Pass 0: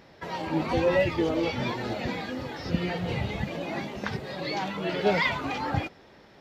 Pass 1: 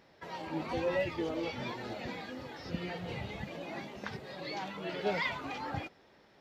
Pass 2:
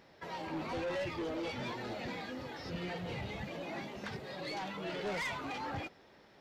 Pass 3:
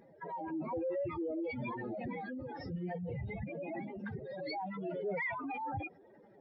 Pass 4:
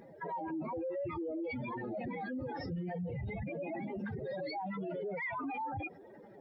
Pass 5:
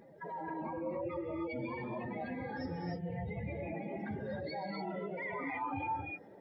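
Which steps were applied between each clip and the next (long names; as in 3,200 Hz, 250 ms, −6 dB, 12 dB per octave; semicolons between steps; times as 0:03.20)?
low-shelf EQ 210 Hz −4.5 dB; level −8 dB
soft clipping −35 dBFS, distortion −9 dB; level +1.5 dB
expanding power law on the bin magnitudes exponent 2.8; level +1.5 dB
brickwall limiter −39 dBFS, peak gain reduction 10 dB; level +6 dB
reverb whose tail is shaped and stops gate 320 ms rising, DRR 0 dB; level −3.5 dB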